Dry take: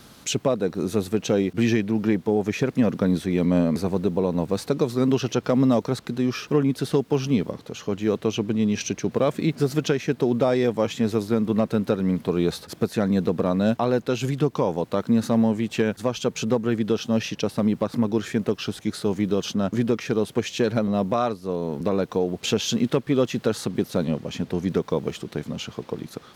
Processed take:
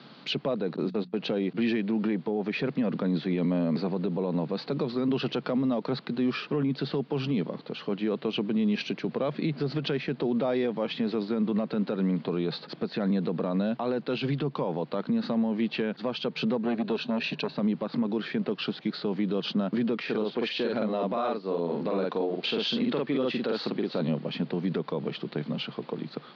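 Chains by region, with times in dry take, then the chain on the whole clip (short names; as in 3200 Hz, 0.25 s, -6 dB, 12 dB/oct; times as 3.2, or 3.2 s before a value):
0.76–1.2 gate -29 dBFS, range -29 dB + notches 60/120/180/240 Hz
16.63–17.55 ripple EQ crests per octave 1.5, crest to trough 8 dB + core saturation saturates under 540 Hz
20.02–24.01 bell 150 Hz -8 dB 0.93 oct + doubler 47 ms -3 dB
whole clip: Chebyshev band-pass 140–4600 Hz, order 5; limiter -19.5 dBFS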